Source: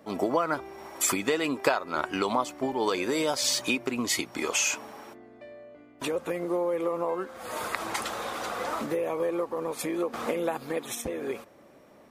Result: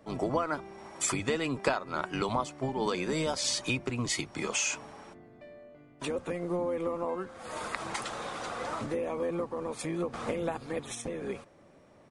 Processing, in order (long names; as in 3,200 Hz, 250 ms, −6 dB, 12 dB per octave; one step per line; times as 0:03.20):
sub-octave generator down 1 octave, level −2 dB
downsampling to 22,050 Hz
level −4 dB